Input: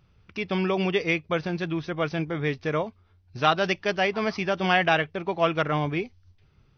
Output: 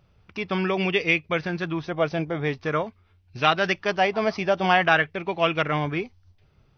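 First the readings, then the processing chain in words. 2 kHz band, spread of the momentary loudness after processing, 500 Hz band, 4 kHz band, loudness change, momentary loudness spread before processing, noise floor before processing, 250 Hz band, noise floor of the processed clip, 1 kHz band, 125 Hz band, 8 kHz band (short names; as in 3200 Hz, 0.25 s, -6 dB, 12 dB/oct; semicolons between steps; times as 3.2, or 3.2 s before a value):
+3.0 dB, 9 LU, +1.5 dB, +2.0 dB, +2.0 dB, 8 LU, -62 dBFS, 0.0 dB, -62 dBFS, +2.5 dB, 0.0 dB, n/a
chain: LFO bell 0.46 Hz 610–2700 Hz +7 dB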